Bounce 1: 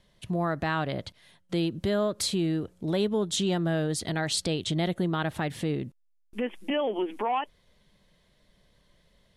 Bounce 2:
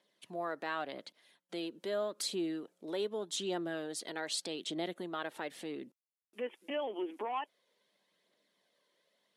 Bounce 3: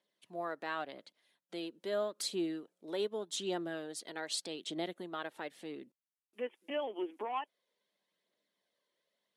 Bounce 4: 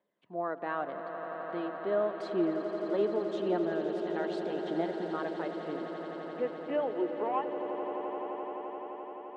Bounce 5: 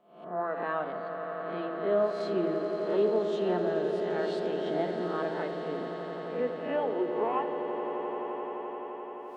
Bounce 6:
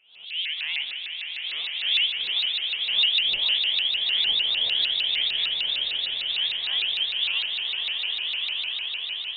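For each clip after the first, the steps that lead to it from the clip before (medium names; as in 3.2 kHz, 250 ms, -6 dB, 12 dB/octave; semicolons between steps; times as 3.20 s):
high-pass 270 Hz 24 dB/octave; phaser 0.84 Hz, delay 2.3 ms, feedback 34%; trim -8.5 dB
upward expansion 1.5:1, over -50 dBFS; trim +1 dB
low-pass 1.4 kHz 12 dB/octave; echo with a slow build-up 86 ms, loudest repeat 8, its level -12.5 dB; trim +5.5 dB
reverse spectral sustain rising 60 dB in 0.61 s; simulated room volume 3200 m³, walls furnished, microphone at 1.5 m
echo that smears into a reverb 1251 ms, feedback 52%, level -4 dB; frequency inversion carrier 3.7 kHz; vibrato with a chosen wave saw up 6.6 Hz, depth 250 cents; trim +2.5 dB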